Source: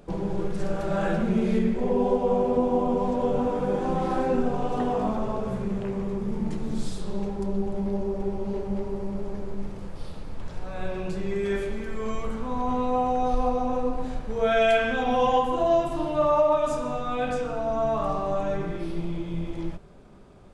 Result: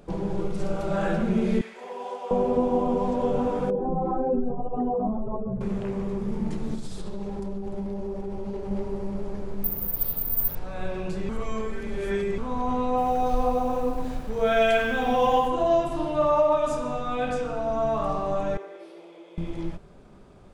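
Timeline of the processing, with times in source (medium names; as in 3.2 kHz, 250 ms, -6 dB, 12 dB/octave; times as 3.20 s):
0.41–0.94 s: band-stop 1.7 kHz, Q 5.2
1.61–2.31 s: high-pass 980 Hz
3.70–5.61 s: spectral contrast enhancement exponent 1.8
6.74–8.71 s: compression, threshold -27 dBFS
9.64–10.55 s: careless resampling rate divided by 3×, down filtered, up zero stuff
11.29–12.38 s: reverse
12.88–15.48 s: bit-crushed delay 93 ms, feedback 35%, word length 7-bit, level -12 dB
18.57–19.38 s: ladder high-pass 410 Hz, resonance 45%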